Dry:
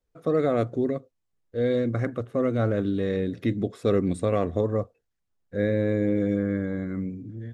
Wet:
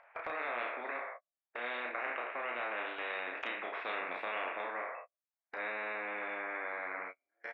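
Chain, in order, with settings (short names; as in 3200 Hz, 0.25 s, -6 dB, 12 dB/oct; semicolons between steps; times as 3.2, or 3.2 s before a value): spectral trails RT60 0.39 s; Chebyshev band-pass 630–2400 Hz, order 4; gate -54 dBFS, range -48 dB; in parallel at 0 dB: limiter -29 dBFS, peak gain reduction 9 dB; on the sum: upward compressor, threshold -40 dBFS; doubler 33 ms -3 dB; spectral compressor 4:1; gain -8 dB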